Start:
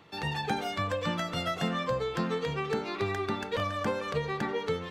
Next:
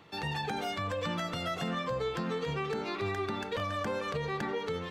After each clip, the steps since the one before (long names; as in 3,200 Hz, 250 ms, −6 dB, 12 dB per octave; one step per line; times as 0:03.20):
brickwall limiter −25 dBFS, peak gain reduction 7.5 dB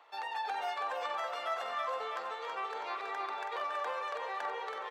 high-pass filter 750 Hz 24 dB per octave
tilt shelving filter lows +9.5 dB, about 1,200 Hz
repeating echo 326 ms, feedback 52%, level −5.5 dB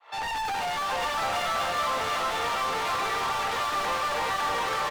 fade in at the beginning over 0.57 s
mid-hump overdrive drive 36 dB, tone 4,900 Hz, clips at −24 dBFS
single-tap delay 739 ms −3 dB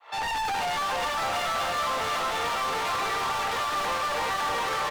soft clipping −26.5 dBFS, distortion −17 dB
level +3 dB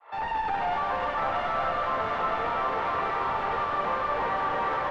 low-pass filter 1,600 Hz 12 dB per octave
four-comb reverb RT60 3.4 s, combs from 31 ms, DRR 2.5 dB